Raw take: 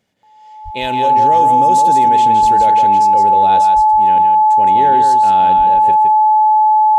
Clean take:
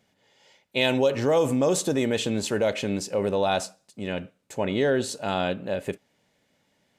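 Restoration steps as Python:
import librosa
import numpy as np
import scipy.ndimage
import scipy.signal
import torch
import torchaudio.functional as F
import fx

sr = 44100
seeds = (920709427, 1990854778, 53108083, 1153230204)

y = fx.notch(x, sr, hz=860.0, q=30.0)
y = fx.fix_deplosive(y, sr, at_s=(0.64, 2.41, 3.75, 5.57))
y = fx.fix_echo_inverse(y, sr, delay_ms=165, level_db=-6.0)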